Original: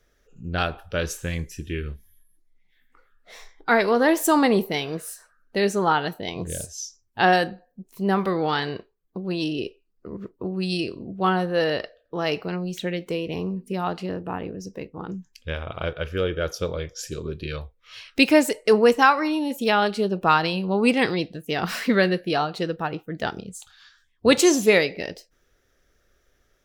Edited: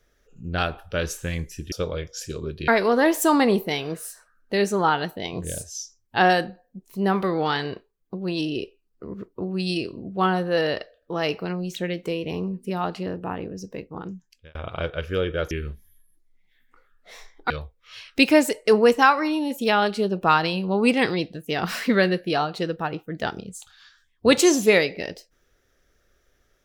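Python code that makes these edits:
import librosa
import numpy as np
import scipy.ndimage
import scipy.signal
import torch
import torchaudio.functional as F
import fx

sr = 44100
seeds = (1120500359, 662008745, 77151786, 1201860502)

y = fx.edit(x, sr, fx.swap(start_s=1.72, length_s=1.99, other_s=16.54, other_length_s=0.96),
    fx.fade_out_span(start_s=15.0, length_s=0.58), tone=tone)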